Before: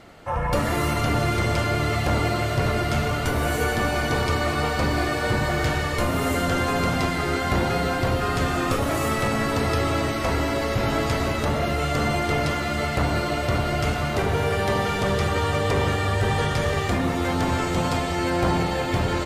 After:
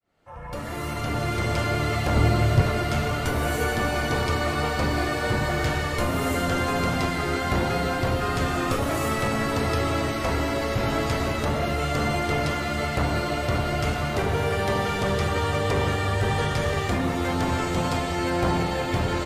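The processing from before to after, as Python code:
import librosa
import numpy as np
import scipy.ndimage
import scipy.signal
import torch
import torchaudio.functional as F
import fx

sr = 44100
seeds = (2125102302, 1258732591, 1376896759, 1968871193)

y = fx.fade_in_head(x, sr, length_s=1.65)
y = fx.low_shelf(y, sr, hz=220.0, db=9.5, at=(2.16, 2.62))
y = y * 10.0 ** (-1.5 / 20.0)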